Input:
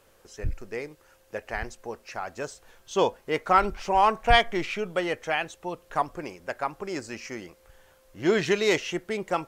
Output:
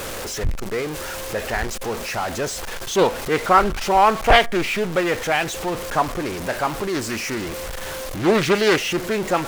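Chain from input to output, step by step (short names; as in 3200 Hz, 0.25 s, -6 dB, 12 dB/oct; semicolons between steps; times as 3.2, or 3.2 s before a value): zero-crossing step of -28.5 dBFS; Doppler distortion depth 0.76 ms; gain +4.5 dB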